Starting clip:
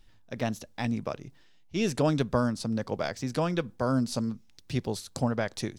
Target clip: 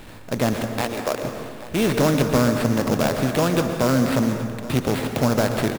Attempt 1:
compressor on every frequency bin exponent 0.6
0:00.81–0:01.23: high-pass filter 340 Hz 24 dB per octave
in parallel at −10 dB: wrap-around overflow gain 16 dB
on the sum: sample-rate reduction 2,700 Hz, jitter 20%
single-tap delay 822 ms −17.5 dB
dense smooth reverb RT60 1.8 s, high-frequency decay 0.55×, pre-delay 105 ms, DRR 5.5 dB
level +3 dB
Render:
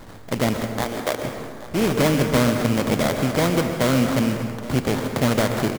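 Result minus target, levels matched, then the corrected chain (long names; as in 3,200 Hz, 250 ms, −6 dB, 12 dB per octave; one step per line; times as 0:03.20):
sample-rate reduction: distortion +5 dB
compressor on every frequency bin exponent 0.6
0:00.81–0:01.23: high-pass filter 340 Hz 24 dB per octave
in parallel at −10 dB: wrap-around overflow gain 16 dB
on the sum: sample-rate reduction 6,100 Hz, jitter 20%
single-tap delay 822 ms −17.5 dB
dense smooth reverb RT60 1.8 s, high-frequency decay 0.55×, pre-delay 105 ms, DRR 5.5 dB
level +3 dB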